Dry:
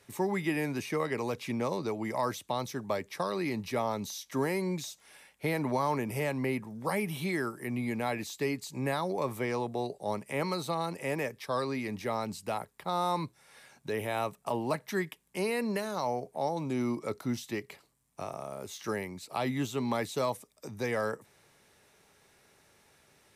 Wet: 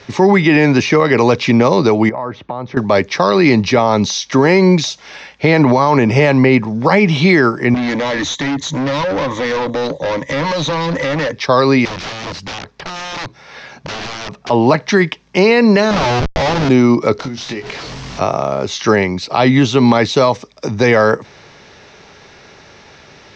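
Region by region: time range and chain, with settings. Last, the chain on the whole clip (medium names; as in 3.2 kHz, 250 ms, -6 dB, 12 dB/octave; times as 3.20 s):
2.09–2.77 s: low-pass 1.5 kHz + compression 3:1, threshold -46 dBFS
7.74–11.33 s: rippled EQ curve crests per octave 1.1, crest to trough 17 dB + compression 3:1, threshold -31 dBFS + hard clipper -38.5 dBFS
11.85–14.50 s: treble shelf 4.6 kHz -6.5 dB + compression 4:1, threshold -40 dBFS + integer overflow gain 42 dB
15.91–16.69 s: steep low-pass 5.5 kHz 96 dB/octave + Schmitt trigger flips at -41 dBFS + compression 2:1, threshold -40 dBFS
17.19–18.20 s: one-bit delta coder 64 kbps, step -44.5 dBFS + compression 10:1, threshold -43 dBFS + doubling 22 ms -7.5 dB
whole clip: steep low-pass 6 kHz 48 dB/octave; loudness maximiser +24 dB; trim -1 dB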